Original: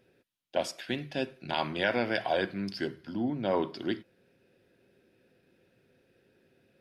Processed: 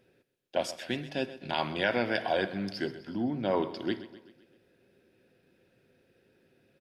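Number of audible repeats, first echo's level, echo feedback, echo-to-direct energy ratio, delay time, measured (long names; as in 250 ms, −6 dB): 4, −15.0 dB, 53%, −13.5 dB, 128 ms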